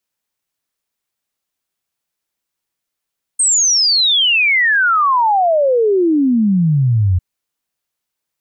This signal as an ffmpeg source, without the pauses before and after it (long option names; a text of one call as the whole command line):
ffmpeg -f lavfi -i "aevalsrc='0.316*clip(min(t,3.8-t)/0.01,0,1)*sin(2*PI*8600*3.8/log(86/8600)*(exp(log(86/8600)*t/3.8)-1))':duration=3.8:sample_rate=44100" out.wav